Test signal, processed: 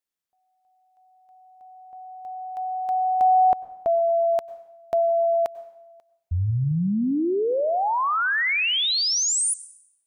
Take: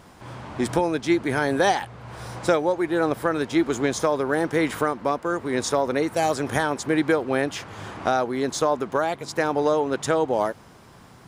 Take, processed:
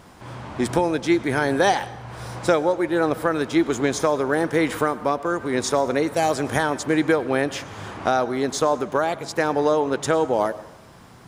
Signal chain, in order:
dense smooth reverb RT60 0.85 s, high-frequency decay 0.85×, pre-delay 85 ms, DRR 17 dB
level +1.5 dB

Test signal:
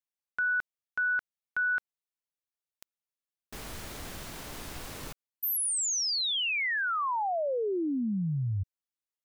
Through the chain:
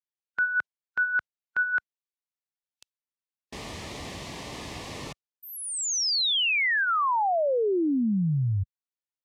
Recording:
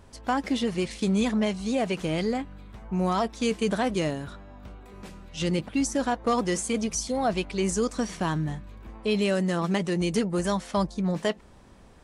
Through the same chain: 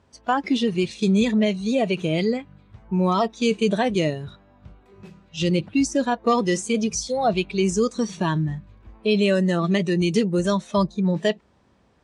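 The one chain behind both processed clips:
high-pass filter 72 Hz 12 dB per octave
noise reduction from a noise print of the clip's start 12 dB
low-pass filter 6,200 Hz 12 dB per octave
level +5.5 dB

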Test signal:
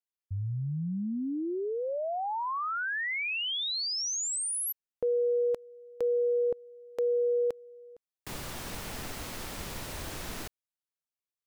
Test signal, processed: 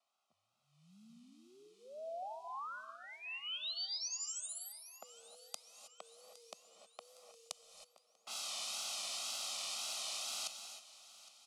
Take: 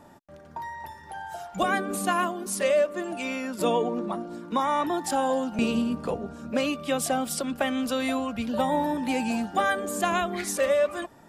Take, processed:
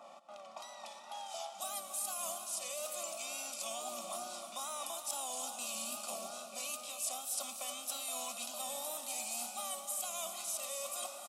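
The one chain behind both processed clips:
compressor on every frequency bin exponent 0.6
Butterworth high-pass 160 Hz 36 dB per octave
low-pass that shuts in the quiet parts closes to 1,200 Hz, open at −20 dBFS
first difference
comb filter 1.6 ms, depth 76%
dynamic equaliser 260 Hz, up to +3 dB, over −56 dBFS, Q 1.4
reversed playback
downward compressor, threshold −41 dBFS
reversed playback
phaser with its sweep stopped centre 470 Hz, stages 6
tape wow and flutter 80 cents
repeating echo 812 ms, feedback 57%, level −18.5 dB
reverb whose tail is shaped and stops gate 340 ms rising, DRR 7.5 dB
level +4.5 dB

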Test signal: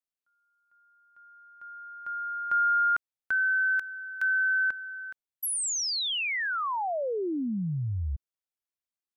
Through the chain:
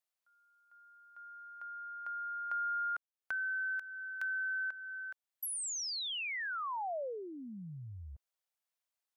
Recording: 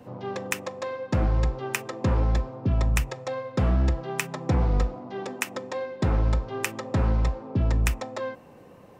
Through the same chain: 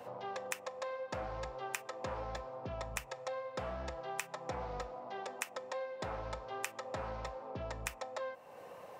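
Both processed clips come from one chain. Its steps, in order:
high-pass filter 110 Hz 6 dB per octave
low shelf with overshoot 420 Hz −10.5 dB, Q 1.5
downward compressor 2 to 1, threshold −50 dBFS
level +2.5 dB

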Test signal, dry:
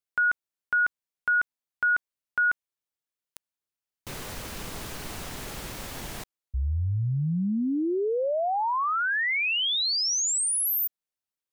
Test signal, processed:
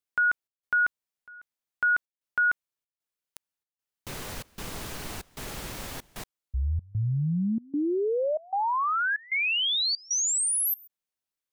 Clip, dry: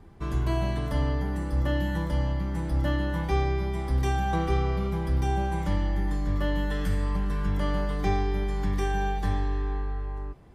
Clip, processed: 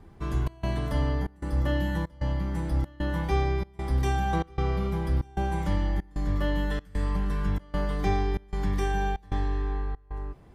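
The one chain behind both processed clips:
gate pattern "xxx.xxxx.x" 95 BPM −24 dB

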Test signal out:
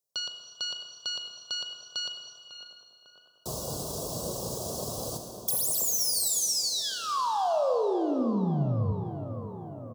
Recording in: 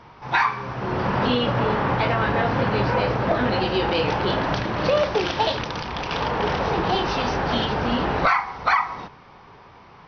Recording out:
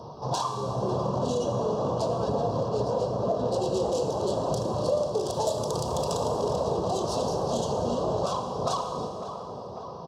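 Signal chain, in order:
phase distortion by the signal itself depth 0.15 ms
Chebyshev band-stop filter 740–5,400 Hz, order 2
reverb reduction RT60 0.6 s
high-pass filter 110 Hz 12 dB per octave
comb filter 1.8 ms, depth 41%
dynamic equaliser 2,500 Hz, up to +4 dB, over −50 dBFS, Q 1.9
downward compressor 4 to 1, threshold −37 dBFS
tape delay 550 ms, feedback 72%, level −9.5 dB, low-pass 2,100 Hz
four-comb reverb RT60 2.1 s, combs from 27 ms, DRR 5 dB
level +9 dB

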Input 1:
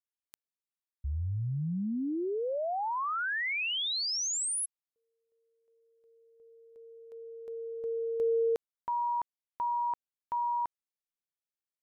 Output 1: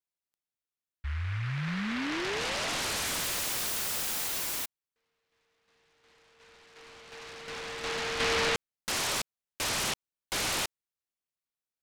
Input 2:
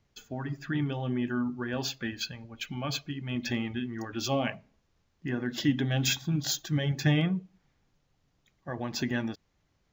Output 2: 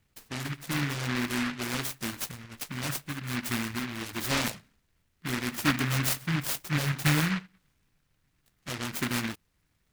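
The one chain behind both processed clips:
short delay modulated by noise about 1,700 Hz, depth 0.41 ms

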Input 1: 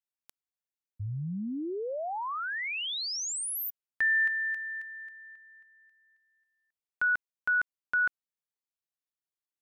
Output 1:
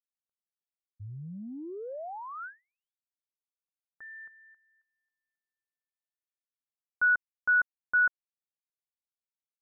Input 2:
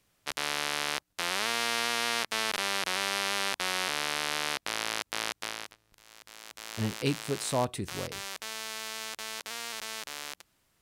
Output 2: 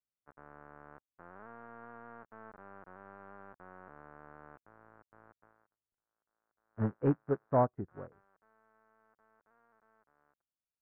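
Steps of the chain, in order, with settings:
soft clipping −22.5 dBFS
elliptic low-pass filter 1,500 Hz, stop band 80 dB
expander for the loud parts 2.5 to 1, over −53 dBFS
level +5.5 dB

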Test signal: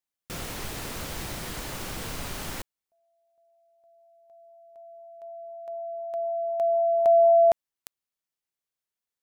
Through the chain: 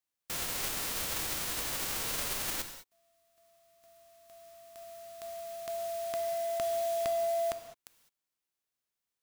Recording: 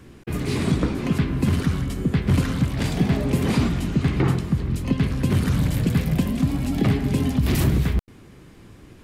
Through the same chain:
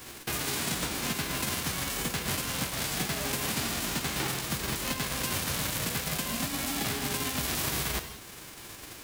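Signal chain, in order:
spectral envelope flattened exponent 0.3
downward compressor 4 to 1, threshold −30 dBFS
soft clipping −20 dBFS
floating-point word with a short mantissa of 2 bits
reverb whose tail is shaped and stops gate 230 ms flat, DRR 7.5 dB

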